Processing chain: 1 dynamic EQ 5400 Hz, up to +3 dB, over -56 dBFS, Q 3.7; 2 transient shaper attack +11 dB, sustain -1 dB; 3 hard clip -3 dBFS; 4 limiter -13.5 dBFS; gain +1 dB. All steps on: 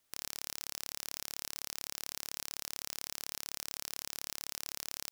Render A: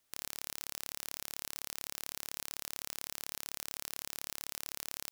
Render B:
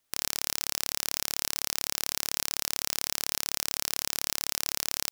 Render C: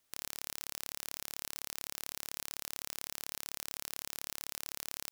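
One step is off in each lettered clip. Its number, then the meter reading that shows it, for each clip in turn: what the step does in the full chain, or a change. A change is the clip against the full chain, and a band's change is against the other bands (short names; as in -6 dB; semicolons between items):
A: 2, 4 kHz band -3.0 dB; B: 4, mean gain reduction 10.5 dB; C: 3, distortion -12 dB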